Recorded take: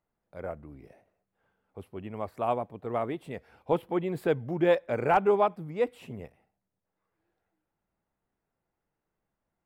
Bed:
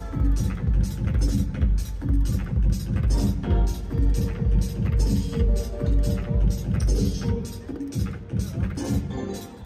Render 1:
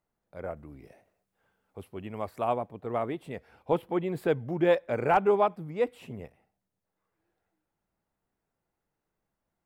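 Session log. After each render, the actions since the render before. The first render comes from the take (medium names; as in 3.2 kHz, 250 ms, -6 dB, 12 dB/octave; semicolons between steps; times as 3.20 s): 0.56–2.44 s: treble shelf 2.6 kHz +6 dB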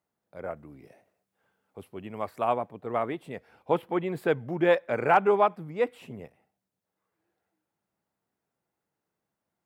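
high-pass 110 Hz 12 dB/octave; dynamic bell 1.6 kHz, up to +5 dB, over -42 dBFS, Q 0.7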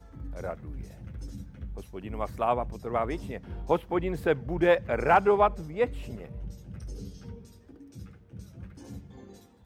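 add bed -18 dB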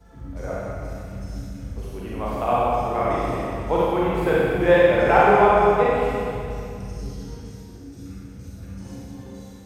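Schroeder reverb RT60 2.5 s, combs from 32 ms, DRR -7.5 dB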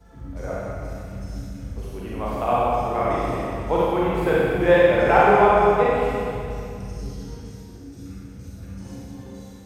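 no audible change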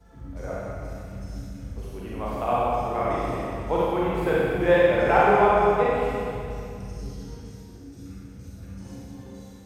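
trim -3 dB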